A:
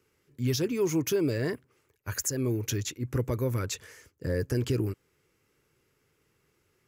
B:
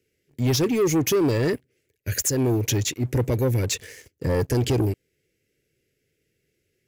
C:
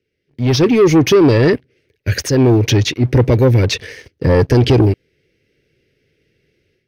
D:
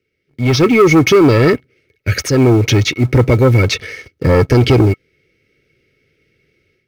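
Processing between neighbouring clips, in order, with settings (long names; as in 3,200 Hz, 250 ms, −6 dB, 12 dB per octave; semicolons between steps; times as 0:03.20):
Chebyshev band-stop filter 560–1,900 Hz, order 2; leveller curve on the samples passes 2; level +3 dB
automatic gain control gain up to 11.5 dB; Savitzky-Golay smoothing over 15 samples
hollow resonant body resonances 1,300/2,200 Hz, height 16 dB, ringing for 65 ms; in parallel at −10 dB: floating-point word with a short mantissa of 2 bits; on the sum: level −1.5 dB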